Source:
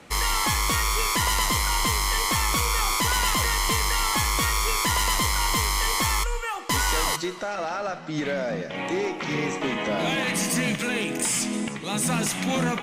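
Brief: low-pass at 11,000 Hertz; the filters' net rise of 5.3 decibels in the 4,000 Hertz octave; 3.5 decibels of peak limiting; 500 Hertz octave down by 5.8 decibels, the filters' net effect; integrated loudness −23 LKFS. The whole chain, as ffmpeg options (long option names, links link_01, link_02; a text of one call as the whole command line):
ffmpeg -i in.wav -af "lowpass=11000,equalizer=frequency=500:width_type=o:gain=-7.5,equalizer=frequency=4000:width_type=o:gain=7,volume=1dB,alimiter=limit=-14.5dB:level=0:latency=1" out.wav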